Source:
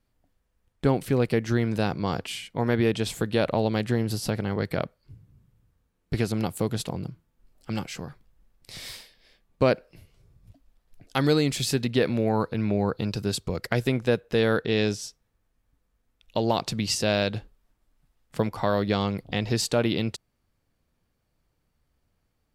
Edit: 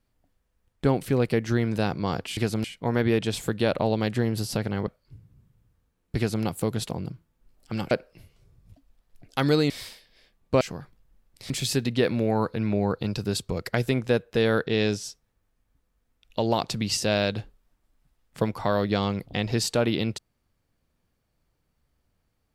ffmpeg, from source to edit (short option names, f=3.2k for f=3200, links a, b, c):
-filter_complex "[0:a]asplit=8[a][b][c][d][e][f][g][h];[a]atrim=end=2.372[i];[b]atrim=start=6.148:end=6.422[j];[c]atrim=start=2.368:end=4.602[k];[d]atrim=start=4.848:end=7.892[l];[e]atrim=start=9.688:end=11.482[m];[f]atrim=start=8.778:end=9.692[n];[g]atrim=start=7.888:end=8.782[o];[h]atrim=start=11.478[p];[i][j]acrossfade=d=0.004:c1=hsin:c2=hsin[q];[q][k]acrossfade=d=0.004:c1=hsin:c2=hsin[r];[r][l]acrossfade=d=0.004:c1=hsin:c2=hsin[s];[s][m]acrossfade=d=0.004:c1=hsin:c2=hsin[t];[t][n]acrossfade=d=0.004:c1=hsin:c2=hsin[u];[u][o]acrossfade=d=0.004:c1=hsin:c2=hsin[v];[v][p]acrossfade=d=0.004:c1=hsin:c2=hsin"